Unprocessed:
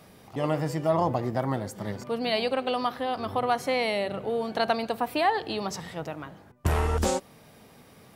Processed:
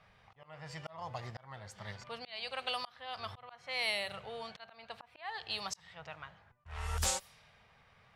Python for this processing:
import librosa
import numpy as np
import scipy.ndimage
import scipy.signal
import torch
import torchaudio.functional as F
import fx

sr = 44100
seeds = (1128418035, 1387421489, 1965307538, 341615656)

y = fx.tone_stack(x, sr, knobs='10-0-10')
y = fx.auto_swell(y, sr, attack_ms=390.0)
y = fx.env_lowpass(y, sr, base_hz=1800.0, full_db=-35.0)
y = y * librosa.db_to_amplitude(2.0)